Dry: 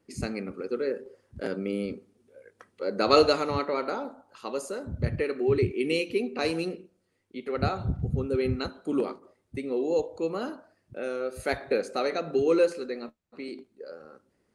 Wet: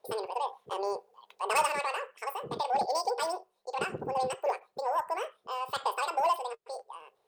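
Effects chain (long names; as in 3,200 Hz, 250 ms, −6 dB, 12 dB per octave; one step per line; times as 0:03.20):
wrong playback speed 7.5 ips tape played at 15 ips
soft clipping −17 dBFS, distortion −15 dB
low shelf with overshoot 340 Hz −7 dB, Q 3
level −3.5 dB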